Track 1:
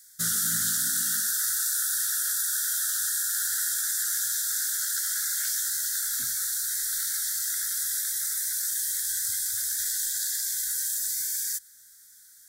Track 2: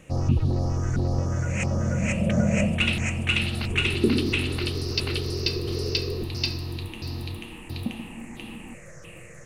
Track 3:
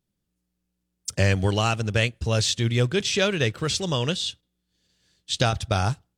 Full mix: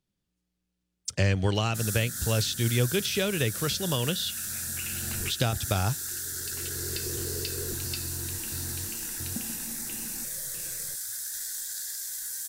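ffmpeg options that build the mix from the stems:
-filter_complex "[0:a]bandreject=f=2900:w=11,acrusher=bits=4:mode=log:mix=0:aa=0.000001,adelay=1550,volume=0.473[s0];[1:a]acompressor=threshold=0.0562:ratio=6,adelay=1500,volume=0.531[s1];[2:a]lowpass=f=3400:p=1,highshelf=f=2300:g=9,volume=0.708,asplit=2[s2][s3];[s3]apad=whole_len=487680[s4];[s1][s4]sidechaincompress=threshold=0.0112:ratio=8:attack=16:release=825[s5];[s0][s5][s2]amix=inputs=3:normalize=0,acrossover=split=470[s6][s7];[s7]acompressor=threshold=0.0447:ratio=6[s8];[s6][s8]amix=inputs=2:normalize=0"

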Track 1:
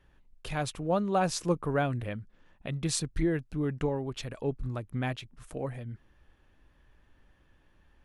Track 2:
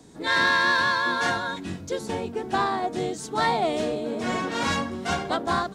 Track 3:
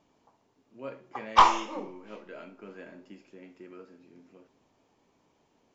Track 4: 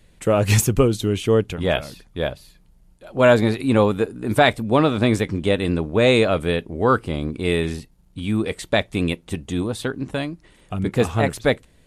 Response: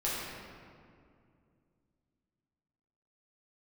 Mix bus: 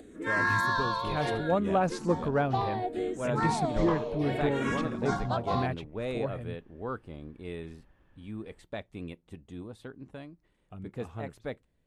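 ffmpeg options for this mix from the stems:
-filter_complex "[0:a]bass=f=250:g=-2,treble=f=4000:g=-4,adelay=600,volume=1.19[s0];[1:a]acompressor=mode=upward:threshold=0.0126:ratio=2.5,asplit=2[s1][s2];[s2]afreqshift=-0.67[s3];[s1][s3]amix=inputs=2:normalize=1,volume=0.75[s4];[2:a]adelay=2500,volume=0.15[s5];[3:a]volume=0.126[s6];[s0][s4][s5][s6]amix=inputs=4:normalize=0,highshelf=f=2700:g=-9.5"

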